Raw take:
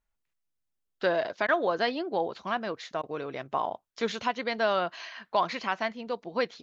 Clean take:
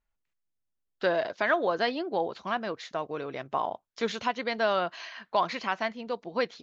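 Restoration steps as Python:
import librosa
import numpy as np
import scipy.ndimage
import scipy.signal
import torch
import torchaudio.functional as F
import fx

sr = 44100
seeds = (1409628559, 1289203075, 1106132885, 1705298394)

y = fx.fix_interpolate(x, sr, at_s=(1.47, 3.02), length_ms=13.0)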